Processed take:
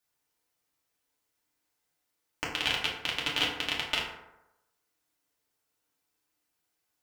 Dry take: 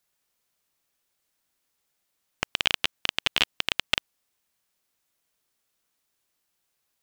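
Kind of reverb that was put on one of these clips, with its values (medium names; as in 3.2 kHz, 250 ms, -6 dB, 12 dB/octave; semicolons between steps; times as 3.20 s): FDN reverb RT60 0.94 s, low-frequency decay 0.85×, high-frequency decay 0.45×, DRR -5 dB; trim -8 dB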